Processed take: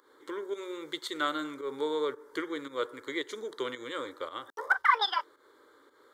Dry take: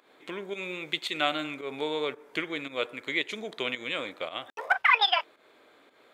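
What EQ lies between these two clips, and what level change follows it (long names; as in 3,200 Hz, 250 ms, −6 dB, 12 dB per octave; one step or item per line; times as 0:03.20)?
phaser with its sweep stopped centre 690 Hz, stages 6
+1.5 dB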